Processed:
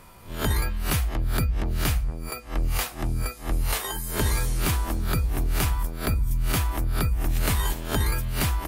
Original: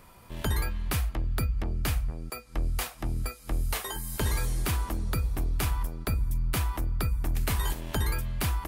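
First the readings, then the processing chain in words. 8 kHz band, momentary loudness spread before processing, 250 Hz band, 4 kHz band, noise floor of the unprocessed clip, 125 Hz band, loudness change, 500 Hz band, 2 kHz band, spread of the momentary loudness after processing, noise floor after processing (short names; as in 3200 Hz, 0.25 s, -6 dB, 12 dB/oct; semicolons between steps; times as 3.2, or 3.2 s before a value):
+5.5 dB, 5 LU, +5.0 dB, +5.5 dB, -52 dBFS, +4.0 dB, +4.5 dB, +5.5 dB, +5.0 dB, 4 LU, -42 dBFS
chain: spectral swells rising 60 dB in 0.31 s; gain +3.5 dB; MP3 64 kbps 44100 Hz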